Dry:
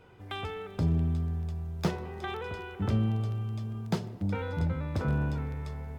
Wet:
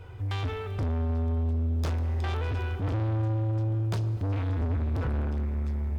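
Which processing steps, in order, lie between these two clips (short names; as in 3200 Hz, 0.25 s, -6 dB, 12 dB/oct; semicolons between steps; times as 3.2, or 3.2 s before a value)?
resonant low shelf 130 Hz +8.5 dB, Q 3; soft clip -32 dBFS, distortion -4 dB; reverb RT60 5.3 s, pre-delay 0.108 s, DRR 14.5 dB; gain +5.5 dB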